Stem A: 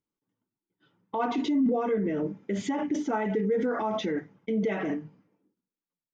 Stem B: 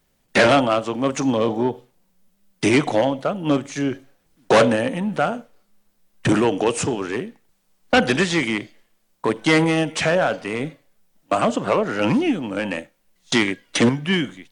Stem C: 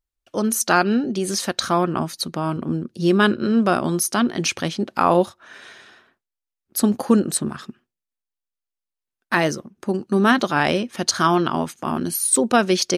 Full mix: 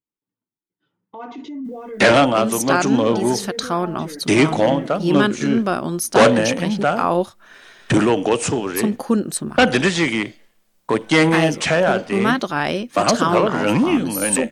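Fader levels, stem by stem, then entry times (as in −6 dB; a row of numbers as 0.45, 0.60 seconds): −6.0, +2.0, −2.0 decibels; 0.00, 1.65, 2.00 seconds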